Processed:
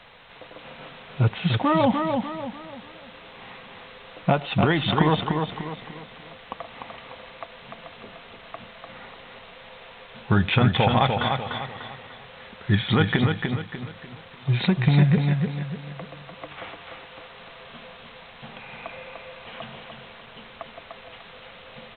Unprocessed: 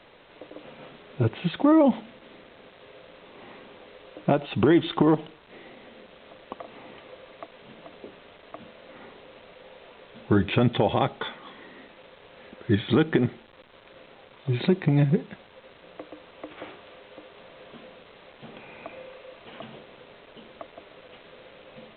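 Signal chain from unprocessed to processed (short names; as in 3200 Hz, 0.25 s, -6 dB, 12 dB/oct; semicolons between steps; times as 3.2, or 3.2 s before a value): bell 340 Hz -14.5 dB 0.89 oct; notch 590 Hz, Q 12; feedback echo 0.297 s, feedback 39%, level -5 dB; gain +6 dB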